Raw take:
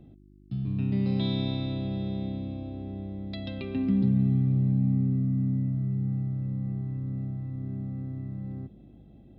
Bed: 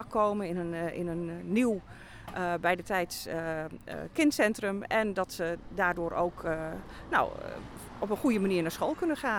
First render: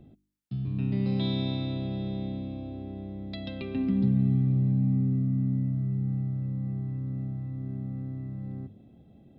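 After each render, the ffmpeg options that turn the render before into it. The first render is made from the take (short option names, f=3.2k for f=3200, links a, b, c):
-af "bandreject=f=50:t=h:w=4,bandreject=f=100:t=h:w=4,bandreject=f=150:t=h:w=4,bandreject=f=200:t=h:w=4,bandreject=f=250:t=h:w=4,bandreject=f=300:t=h:w=4,bandreject=f=350:t=h:w=4"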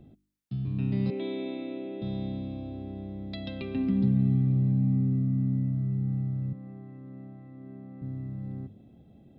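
-filter_complex "[0:a]asettb=1/sr,asplit=3[a][b][c];[a]atrim=end=1.104[d];[b]atrim=start=1.1:end=2.02,asetpts=PTS-STARTPTS,afade=t=in:d=0.004:c=qsin,afade=t=out:st=0.916:d=0.004:c=qsin,highpass=f=290:w=0.5412,highpass=f=290:w=1.3066,equalizer=f=290:t=q:w=4:g=4,equalizer=f=420:t=q:w=4:g=7,equalizer=f=740:t=q:w=4:g=-4,equalizer=f=1.1k:t=q:w=4:g=-9,equalizer=f=1.6k:t=q:w=4:g=-5,equalizer=f=2.3k:t=q:w=4:g=3,lowpass=f=2.7k:w=0.5412,lowpass=f=2.7k:w=1.3066[e];[c]atrim=start=2.016[f];[d][e]acrossfade=d=0.004:c1=hsin:c2=qsin[g];[g][f]acrossfade=d=0.004:c1=qsin:c2=hsin,asettb=1/sr,asplit=3[h][i][j];[h]atrim=end=6.534[k];[i]atrim=start=6.53:end=8.02,asetpts=PTS-STARTPTS,afade=t=in:d=0.004:c=qsin,afade=t=out:st=1.486:d=0.004:c=qsin,highpass=300,lowpass=2.8k[l];[j]atrim=start=8.016[m];[k][l]acrossfade=d=0.004:c1=hsin:c2=qsin[n];[n][m]acrossfade=d=0.004:c1=qsin:c2=hsin"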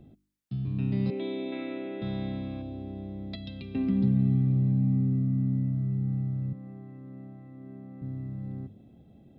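-filter_complex "[0:a]asettb=1/sr,asplit=3[a][b][c];[a]atrim=end=1.524[d];[b]atrim=start=1.52:end=2.62,asetpts=PTS-STARTPTS,afade=t=in:d=0.004:c=qsin,afade=t=out:st=1.096:d=0.004:c=qsin,equalizer=f=1.6k:t=o:w=1.1:g=13.5[e];[c]atrim=start=2.616[f];[d][e]acrossfade=d=0.004:c1=hsin:c2=qsin[g];[g][f]acrossfade=d=0.004:c1=qsin:c2=hsin,asettb=1/sr,asplit=3[h][i][j];[h]atrim=end=3.354[k];[i]atrim=start=3.35:end=3.75,asetpts=PTS-STARTPTS,afade=t=in:d=0.004:c=qsin,afade=t=out:st=0.396:d=0.004:c=qsin,acrossover=split=230|3000[l][m][n];[m]acompressor=threshold=-50dB:ratio=5:attack=3.2:release=140:knee=2.83:detection=peak[o];[l][o][n]amix=inputs=3:normalize=0[p];[j]atrim=start=3.746[q];[k][p]acrossfade=d=0.004:c1=hsin:c2=qsin[r];[r][q]acrossfade=d=0.004:c1=qsin:c2=hsin"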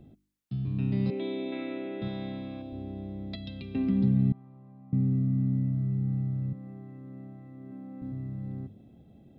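-filter_complex "[0:a]asettb=1/sr,asplit=3[a][b][c];[a]atrim=end=2.084[d];[b]atrim=start=2.08:end=2.73,asetpts=PTS-STARTPTS,afade=t=in:d=0.004:c=qsin,afade=t=out:st=0.646:d=0.004:c=qsin,highpass=f=210:p=1[e];[c]atrim=start=2.726[f];[d][e]acrossfade=d=0.004:c1=hsin:c2=qsin[g];[g][f]acrossfade=d=0.004:c1=qsin:c2=hsin,asettb=1/sr,asplit=3[h][i][j];[h]atrim=end=4.324[k];[i]atrim=start=4.32:end=4.93,asetpts=PTS-STARTPTS,afade=t=in:d=0.004:c=qsin,afade=t=out:st=0.606:d=0.004:c=qsin,bandpass=f=960:t=q:w=3.7[l];[j]atrim=start=4.926[m];[k][l]acrossfade=d=0.004:c1=hsin:c2=qsin[n];[n][m]acrossfade=d=0.004:c1=qsin:c2=hsin,asettb=1/sr,asplit=3[o][p][q];[o]atrim=end=7.714[r];[p]atrim=start=7.71:end=8.12,asetpts=PTS-STARTPTS,afade=t=in:d=0.004:c=qsin,afade=t=out:st=0.406:d=0.004:c=qsin,aecho=1:1:3.7:0.65,atrim=end_sample=18081[s];[q]atrim=start=8.116[t];[r][s]acrossfade=d=0.004:c1=hsin:c2=qsin[u];[u][t]acrossfade=d=0.004:c1=qsin:c2=hsin"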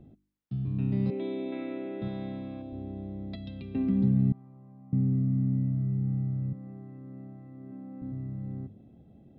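-af "highshelf=f=2.5k:g=-10"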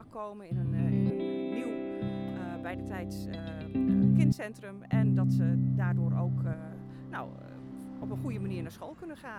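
-filter_complex "[1:a]volume=-13dB[a];[0:a][a]amix=inputs=2:normalize=0"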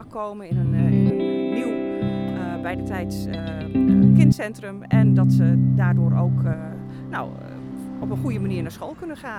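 -af "volume=10.5dB"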